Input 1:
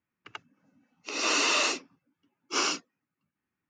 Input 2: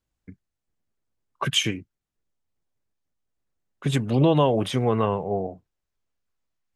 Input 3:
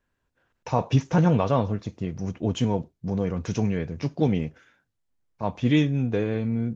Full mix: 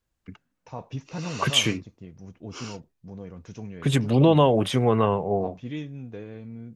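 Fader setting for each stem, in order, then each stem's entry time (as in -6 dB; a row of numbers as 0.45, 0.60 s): -13.5, +1.5, -13.5 dB; 0.00, 0.00, 0.00 s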